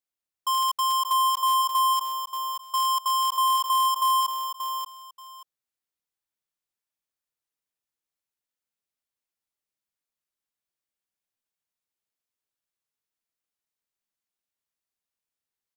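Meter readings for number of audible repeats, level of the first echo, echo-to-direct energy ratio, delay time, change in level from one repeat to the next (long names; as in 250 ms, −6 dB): 2, −7.5 dB, −7.5 dB, 582 ms, −13.0 dB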